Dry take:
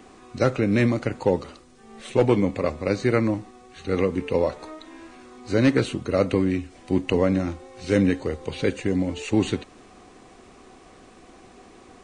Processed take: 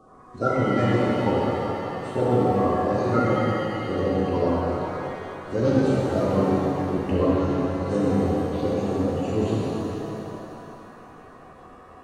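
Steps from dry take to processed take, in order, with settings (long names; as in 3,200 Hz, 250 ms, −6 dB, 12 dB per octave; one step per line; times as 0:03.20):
spectral magnitudes quantised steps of 30 dB
high shelf with overshoot 1,600 Hz −6 dB, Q 3
reverb with rising layers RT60 3.1 s, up +7 semitones, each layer −8 dB, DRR −7 dB
level −7 dB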